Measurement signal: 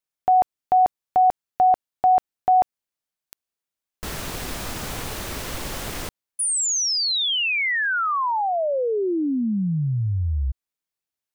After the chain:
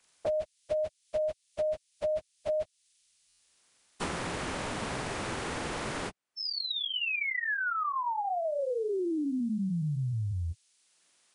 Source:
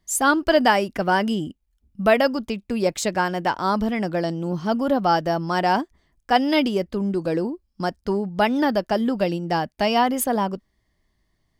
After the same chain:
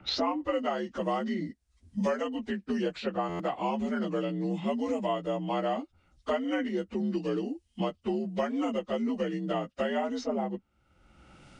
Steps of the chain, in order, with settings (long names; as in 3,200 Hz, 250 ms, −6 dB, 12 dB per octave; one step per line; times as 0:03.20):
partials spread apart or drawn together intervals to 83%
buffer that repeats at 0:03.28, samples 512, times 9
multiband upward and downward compressor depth 100%
level −8.5 dB